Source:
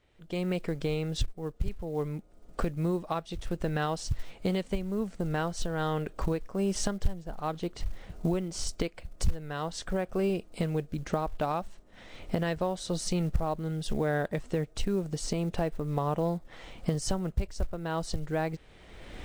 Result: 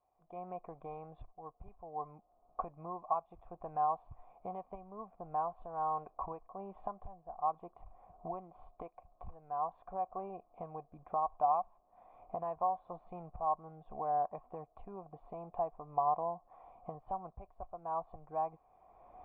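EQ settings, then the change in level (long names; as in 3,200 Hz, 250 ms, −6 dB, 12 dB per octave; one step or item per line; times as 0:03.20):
dynamic equaliser 1,000 Hz, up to +5 dB, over −47 dBFS, Q 2.9
formant resonators in series a
+5.5 dB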